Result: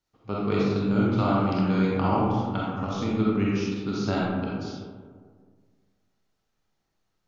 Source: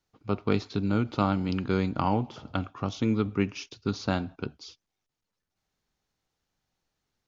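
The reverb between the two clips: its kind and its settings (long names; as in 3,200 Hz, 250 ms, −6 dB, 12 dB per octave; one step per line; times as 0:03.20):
comb and all-pass reverb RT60 1.8 s, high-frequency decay 0.35×, pre-delay 5 ms, DRR −6 dB
level −4 dB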